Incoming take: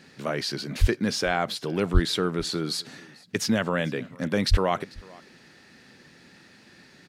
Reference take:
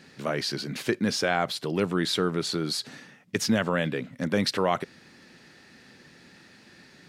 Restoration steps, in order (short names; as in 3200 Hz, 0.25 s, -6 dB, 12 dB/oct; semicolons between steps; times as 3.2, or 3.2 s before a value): 0.8–0.92 HPF 140 Hz 24 dB/oct; 1.93–2.05 HPF 140 Hz 24 dB/oct; 4.5–4.62 HPF 140 Hz 24 dB/oct; inverse comb 0.444 s -23.5 dB